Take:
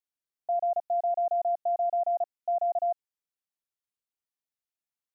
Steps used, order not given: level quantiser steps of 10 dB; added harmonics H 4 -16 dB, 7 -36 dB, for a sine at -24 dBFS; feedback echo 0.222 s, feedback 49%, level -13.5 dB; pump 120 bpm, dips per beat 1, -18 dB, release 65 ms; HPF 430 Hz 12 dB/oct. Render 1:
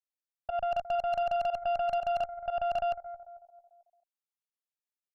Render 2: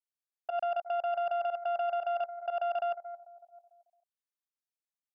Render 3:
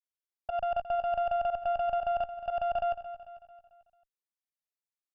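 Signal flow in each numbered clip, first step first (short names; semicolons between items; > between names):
HPF > level quantiser > feedback echo > added harmonics > pump; feedback echo > level quantiser > added harmonics > HPF > pump; HPF > level quantiser > added harmonics > pump > feedback echo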